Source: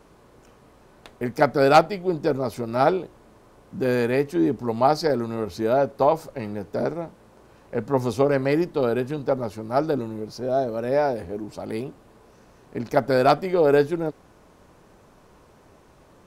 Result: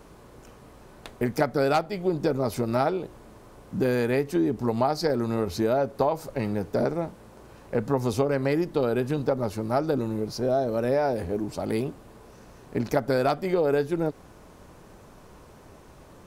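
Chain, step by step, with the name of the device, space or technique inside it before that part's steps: ASMR close-microphone chain (bass shelf 150 Hz +4 dB; compression 6:1, threshold -23 dBFS, peak gain reduction 13.5 dB; treble shelf 7.9 kHz +4.5 dB); trim +2.5 dB

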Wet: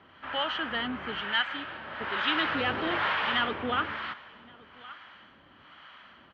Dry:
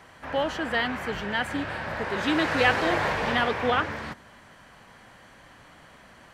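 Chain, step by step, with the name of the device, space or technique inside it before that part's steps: 1.41–2.01 s: bass shelf 420 Hz -11 dB; delay 1120 ms -23.5 dB; guitar amplifier with harmonic tremolo (harmonic tremolo 1.1 Hz, depth 70%, crossover 650 Hz; saturation -18.5 dBFS, distortion -20 dB; cabinet simulation 86–3800 Hz, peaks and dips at 120 Hz -9 dB, 170 Hz -4 dB, 490 Hz -6 dB, 710 Hz -4 dB, 1.3 kHz +7 dB, 3.1 kHz +9 dB)

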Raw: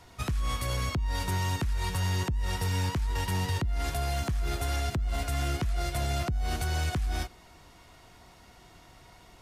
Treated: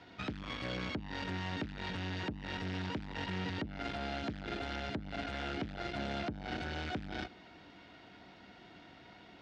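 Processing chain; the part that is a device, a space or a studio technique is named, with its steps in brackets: guitar amplifier (valve stage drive 35 dB, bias 0.55; tone controls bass -5 dB, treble +9 dB; cabinet simulation 84–3500 Hz, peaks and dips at 200 Hz +8 dB, 290 Hz +8 dB, 1.1 kHz -8 dB, 1.5 kHz +4 dB); trim +2 dB

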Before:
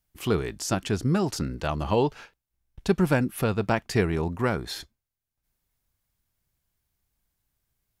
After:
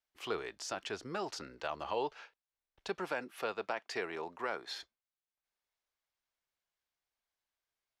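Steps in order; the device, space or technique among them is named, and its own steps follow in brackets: 2.99–4.75 s: Bessel high-pass 200 Hz, order 2; DJ mixer with the lows and highs turned down (three-band isolator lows -22 dB, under 410 Hz, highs -16 dB, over 6.2 kHz; peak limiter -18.5 dBFS, peak gain reduction 6.5 dB); trim -6 dB

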